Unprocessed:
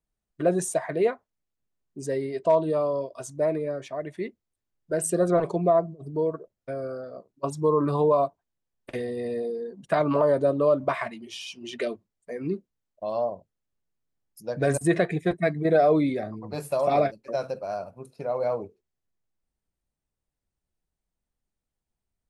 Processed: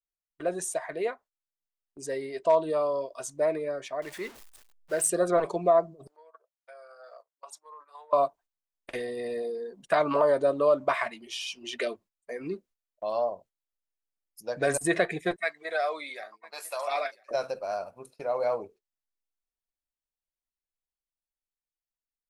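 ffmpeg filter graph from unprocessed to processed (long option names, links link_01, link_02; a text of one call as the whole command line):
ffmpeg -i in.wav -filter_complex "[0:a]asettb=1/sr,asplit=3[link_01][link_02][link_03];[link_01]atrim=end=4.024[link_04];[link_02]atrim=start=4.02:end=5.08,asetpts=PTS-STARTPTS,afade=type=in:duration=0.004:curve=qsin,afade=type=out:start_time=1.056:duration=0.004:curve=qsin,aeval=exprs='val(0)+0.5*0.00891*sgn(val(0))':channel_layout=same,lowshelf=frequency=420:gain=-3.5[link_05];[link_03]atrim=start=5.076[link_06];[link_04][link_05]acrossfade=duration=0.004:curve1=hsin:curve2=qsin[link_07];[link_07][link_06]acrossfade=duration=0.004:curve1=qsin:curve2=hsin,asettb=1/sr,asplit=3[link_08][link_09][link_10];[link_08]atrim=end=6.074[link_11];[link_09]atrim=start=6.07:end=8.13,asetpts=PTS-STARTPTS,afade=type=in:duration=0.004:curve=qsin,afade=type=out:start_time=2.056:duration=0.004:curve=qsin,acompressor=threshold=-37dB:ratio=8:attack=3.2:release=140:knee=1:detection=peak,highpass=frequency=670:width=0.5412,highpass=frequency=670:width=1.3066[link_12];[link_10]atrim=start=8.126[link_13];[link_11][link_12]acrossfade=duration=0.004:curve1=hsin:curve2=qsin[link_14];[link_14][link_13]acrossfade=duration=0.004:curve1=qsin:curve2=hsin,asettb=1/sr,asplit=3[link_15][link_16][link_17];[link_15]atrim=end=15.364[link_18];[link_16]atrim=start=15.36:end=17.31,asetpts=PTS-STARTPTS,afade=type=in:duration=0.004:curve=qsin,afade=type=out:start_time=1.946:duration=0.004:curve=qsin,highpass=1000,aecho=1:1:997:0.075,atrim=end_sample=85995[link_19];[link_17]atrim=start=17.306[link_20];[link_18][link_19]acrossfade=duration=0.004:curve1=hsin:curve2=qsin[link_21];[link_21][link_20]acrossfade=duration=0.004:curve1=qsin:curve2=hsin,dynaudnorm=framelen=450:gausssize=9:maxgain=5dB,agate=range=-12dB:threshold=-45dB:ratio=16:detection=peak,equalizer=frequency=120:width=0.38:gain=-14.5,volume=-2dB" out.wav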